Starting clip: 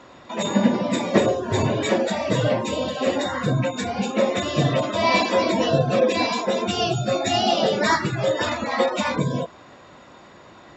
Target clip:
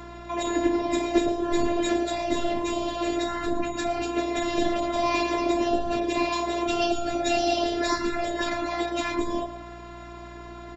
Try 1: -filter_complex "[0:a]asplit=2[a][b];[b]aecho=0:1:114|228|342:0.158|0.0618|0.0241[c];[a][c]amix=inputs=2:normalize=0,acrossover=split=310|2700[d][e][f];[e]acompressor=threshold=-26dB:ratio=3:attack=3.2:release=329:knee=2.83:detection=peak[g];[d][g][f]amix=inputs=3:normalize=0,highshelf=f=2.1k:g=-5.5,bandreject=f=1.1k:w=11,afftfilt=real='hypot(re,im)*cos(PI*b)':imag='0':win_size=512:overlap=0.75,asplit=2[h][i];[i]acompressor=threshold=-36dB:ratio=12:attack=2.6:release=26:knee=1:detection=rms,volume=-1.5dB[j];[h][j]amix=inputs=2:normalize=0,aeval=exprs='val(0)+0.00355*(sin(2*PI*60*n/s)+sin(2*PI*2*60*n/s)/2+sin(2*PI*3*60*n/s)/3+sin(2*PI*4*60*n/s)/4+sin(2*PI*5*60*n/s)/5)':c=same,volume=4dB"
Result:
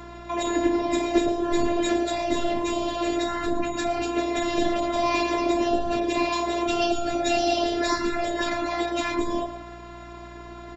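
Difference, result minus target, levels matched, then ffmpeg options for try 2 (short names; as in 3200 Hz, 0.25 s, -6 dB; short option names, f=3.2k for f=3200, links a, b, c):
compressor: peak gain reduction -8.5 dB
-filter_complex "[0:a]asplit=2[a][b];[b]aecho=0:1:114|228|342:0.158|0.0618|0.0241[c];[a][c]amix=inputs=2:normalize=0,acrossover=split=310|2700[d][e][f];[e]acompressor=threshold=-26dB:ratio=3:attack=3.2:release=329:knee=2.83:detection=peak[g];[d][g][f]amix=inputs=3:normalize=0,highshelf=f=2.1k:g=-5.5,bandreject=f=1.1k:w=11,afftfilt=real='hypot(re,im)*cos(PI*b)':imag='0':win_size=512:overlap=0.75,asplit=2[h][i];[i]acompressor=threshold=-45.5dB:ratio=12:attack=2.6:release=26:knee=1:detection=rms,volume=-1.5dB[j];[h][j]amix=inputs=2:normalize=0,aeval=exprs='val(0)+0.00355*(sin(2*PI*60*n/s)+sin(2*PI*2*60*n/s)/2+sin(2*PI*3*60*n/s)/3+sin(2*PI*4*60*n/s)/4+sin(2*PI*5*60*n/s)/5)':c=same,volume=4dB"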